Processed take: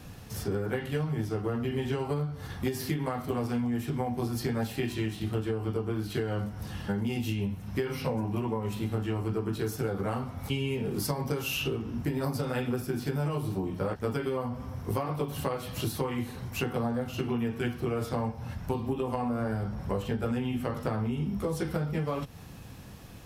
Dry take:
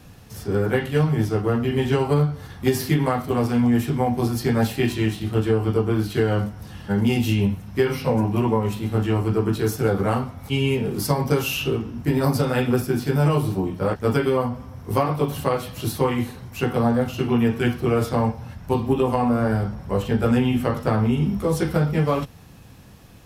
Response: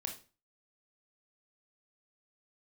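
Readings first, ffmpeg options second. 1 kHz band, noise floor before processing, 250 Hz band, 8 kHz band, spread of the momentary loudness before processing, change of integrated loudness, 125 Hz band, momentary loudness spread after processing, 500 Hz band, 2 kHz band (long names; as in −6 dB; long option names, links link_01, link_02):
−10.0 dB, −44 dBFS, −10.0 dB, −7.0 dB, 6 LU, −10.0 dB, −9.5 dB, 3 LU, −10.0 dB, −9.0 dB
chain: -af "acompressor=threshold=-28dB:ratio=6"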